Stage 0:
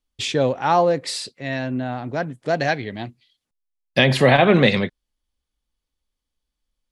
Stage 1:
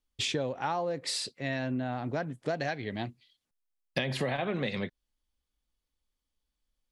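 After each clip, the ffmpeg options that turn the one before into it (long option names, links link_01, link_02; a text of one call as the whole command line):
ffmpeg -i in.wav -af "acompressor=threshold=-24dB:ratio=16,volume=-3.5dB" out.wav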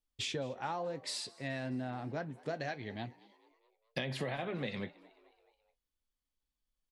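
ffmpeg -i in.wav -filter_complex "[0:a]flanger=delay=5.9:depth=3.5:regen=-70:speed=0.93:shape=triangular,asplit=5[link_01][link_02][link_03][link_04][link_05];[link_02]adelay=214,afreqshift=84,volume=-23dB[link_06];[link_03]adelay=428,afreqshift=168,volume=-28dB[link_07];[link_04]adelay=642,afreqshift=252,volume=-33.1dB[link_08];[link_05]adelay=856,afreqshift=336,volume=-38.1dB[link_09];[link_01][link_06][link_07][link_08][link_09]amix=inputs=5:normalize=0,volume=-2dB" out.wav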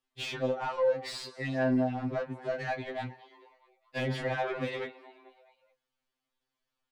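ffmpeg -i in.wav -filter_complex "[0:a]asplit=2[link_01][link_02];[link_02]highpass=frequency=720:poles=1,volume=21dB,asoftclip=type=tanh:threshold=-20.5dB[link_03];[link_01][link_03]amix=inputs=2:normalize=0,lowpass=frequency=1300:poles=1,volume=-6dB,afftfilt=real='re*2.45*eq(mod(b,6),0)':imag='im*2.45*eq(mod(b,6),0)':win_size=2048:overlap=0.75,volume=1.5dB" out.wav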